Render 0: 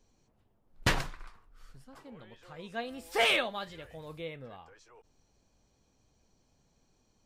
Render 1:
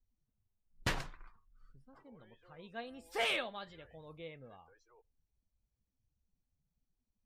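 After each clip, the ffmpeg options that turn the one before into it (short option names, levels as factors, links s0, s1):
-af "afftdn=nr=19:nf=-58,volume=0.422"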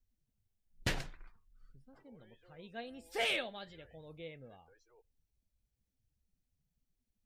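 -af "equalizer=f=1100:t=o:w=0.62:g=-9.5,volume=1.12"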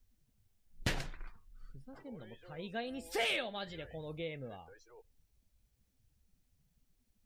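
-af "acompressor=threshold=0.00501:ratio=2,volume=2.66"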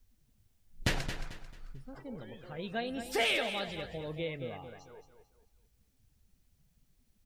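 -af "aecho=1:1:221|442|663|884:0.335|0.111|0.0365|0.012,volume=1.58"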